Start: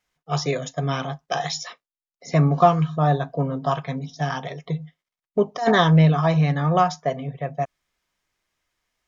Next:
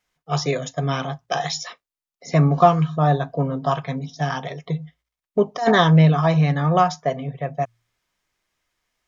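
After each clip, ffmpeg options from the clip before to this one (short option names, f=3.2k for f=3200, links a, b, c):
-af "bandreject=f=58.16:t=h:w=4,bandreject=f=116.32:t=h:w=4,volume=1.5dB"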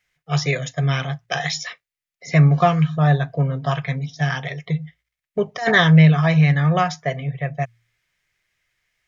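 -af "equalizer=f=125:t=o:w=1:g=8,equalizer=f=250:t=o:w=1:g=-8,equalizer=f=1k:t=o:w=1:g=-7,equalizer=f=2k:t=o:w=1:g=10"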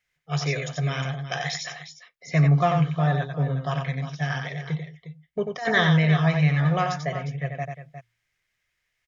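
-af "aecho=1:1:91|357:0.531|0.251,volume=-6dB"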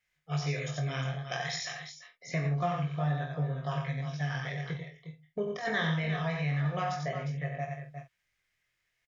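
-filter_complex "[0:a]flanger=delay=20:depth=4.5:speed=0.27,asplit=2[a][b];[b]adelay=47,volume=-9.5dB[c];[a][c]amix=inputs=2:normalize=0,acompressor=threshold=-33dB:ratio=2"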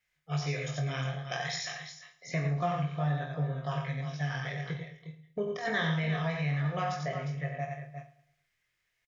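-af "aecho=1:1:108|216|324|432:0.15|0.0628|0.0264|0.0111"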